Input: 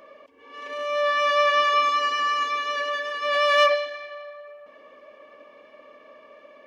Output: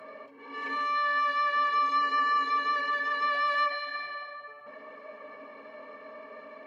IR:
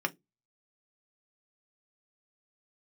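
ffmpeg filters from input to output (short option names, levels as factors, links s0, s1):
-filter_complex "[0:a]acrossover=split=1000|2300[s0][s1][s2];[s0]acompressor=threshold=0.0178:ratio=4[s3];[s1]acompressor=threshold=0.0224:ratio=4[s4];[s2]acompressor=threshold=0.00562:ratio=4[s5];[s3][s4][s5]amix=inputs=3:normalize=0[s6];[1:a]atrim=start_sample=2205,asetrate=33075,aresample=44100[s7];[s6][s7]afir=irnorm=-1:irlink=0,volume=0.668"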